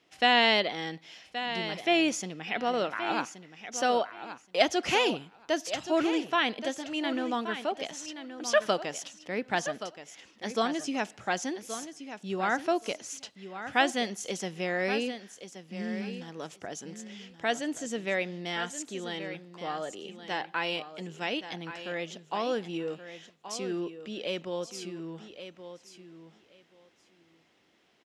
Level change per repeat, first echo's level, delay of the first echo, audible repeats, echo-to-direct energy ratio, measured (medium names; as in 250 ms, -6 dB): -16.0 dB, -11.0 dB, 1125 ms, 2, -11.0 dB